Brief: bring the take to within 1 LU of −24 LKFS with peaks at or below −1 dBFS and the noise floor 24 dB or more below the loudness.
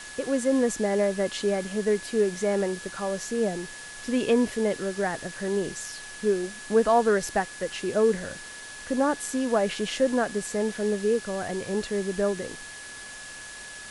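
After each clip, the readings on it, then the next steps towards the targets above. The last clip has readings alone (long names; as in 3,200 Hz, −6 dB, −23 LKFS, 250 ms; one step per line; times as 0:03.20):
interfering tone 1,700 Hz; level of the tone −42 dBFS; background noise floor −42 dBFS; target noise floor −51 dBFS; integrated loudness −26.5 LKFS; sample peak −10.5 dBFS; target loudness −24.0 LKFS
→ notch filter 1,700 Hz, Q 30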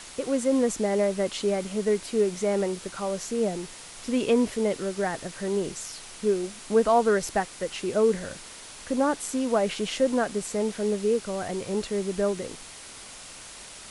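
interfering tone none found; background noise floor −44 dBFS; target noise floor −51 dBFS
→ broadband denoise 7 dB, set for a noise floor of −44 dBFS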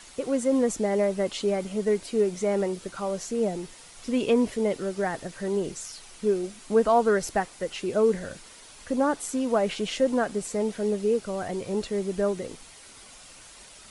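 background noise floor −49 dBFS; target noise floor −51 dBFS
→ broadband denoise 6 dB, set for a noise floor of −49 dBFS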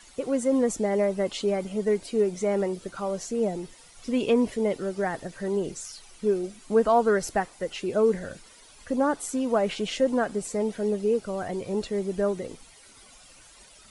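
background noise floor −52 dBFS; integrated loudness −27.0 LKFS; sample peak −11.0 dBFS; target loudness −24.0 LKFS
→ level +3 dB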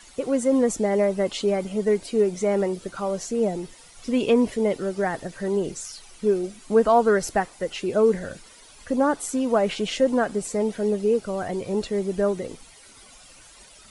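integrated loudness −24.0 LKFS; sample peak −8.0 dBFS; background noise floor −49 dBFS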